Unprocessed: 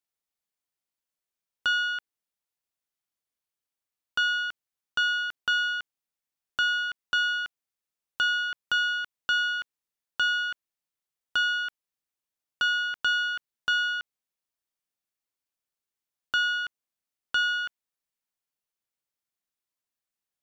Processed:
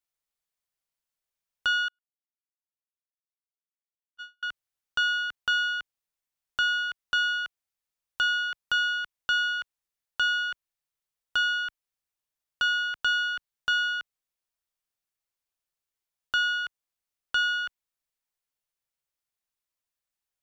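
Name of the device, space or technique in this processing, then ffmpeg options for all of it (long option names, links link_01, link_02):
low shelf boost with a cut just above: -filter_complex "[0:a]lowshelf=frequency=69:gain=7.5,equalizer=frequency=250:width_type=o:width=1.1:gain=-5.5,asettb=1/sr,asplit=3[link_01][link_02][link_03];[link_01]atrim=end=1.884[link_04];[link_02]atrim=start=1.88:end=4.43,asetpts=PTS-STARTPTS,afade=type=in:duration=0.004:curve=qsin,afade=type=out:start_time=2.546:duration=0.004:curve=qsin,agate=range=-53dB:threshold=-21dB:ratio=16:detection=peak[link_05];[link_03]atrim=start=4.426[link_06];[link_04][link_05]acrossfade=duration=0.004:curve1=hsin:curve2=qsin[link_07];[link_07][link_06]acrossfade=duration=0.004:curve1=qsin:curve2=hsin"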